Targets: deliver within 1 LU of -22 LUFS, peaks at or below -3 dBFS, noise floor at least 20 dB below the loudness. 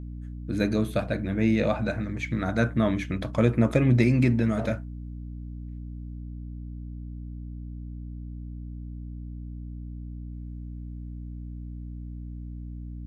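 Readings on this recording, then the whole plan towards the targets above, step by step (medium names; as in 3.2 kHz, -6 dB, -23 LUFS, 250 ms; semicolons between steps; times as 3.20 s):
hum 60 Hz; highest harmonic 300 Hz; hum level -34 dBFS; loudness -25.0 LUFS; peak level -7.0 dBFS; loudness target -22.0 LUFS
-> de-hum 60 Hz, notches 5; trim +3 dB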